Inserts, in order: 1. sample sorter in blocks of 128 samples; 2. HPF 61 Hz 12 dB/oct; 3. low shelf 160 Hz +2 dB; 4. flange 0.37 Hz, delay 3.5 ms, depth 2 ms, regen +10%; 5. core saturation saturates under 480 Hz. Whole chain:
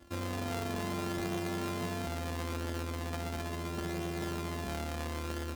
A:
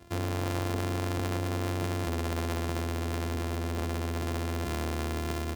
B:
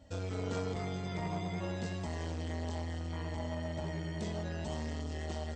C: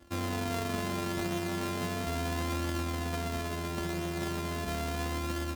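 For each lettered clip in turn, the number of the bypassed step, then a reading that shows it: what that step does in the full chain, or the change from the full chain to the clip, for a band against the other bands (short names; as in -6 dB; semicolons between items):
4, momentary loudness spread change -1 LU; 1, 125 Hz band +5.0 dB; 5, crest factor change -3.0 dB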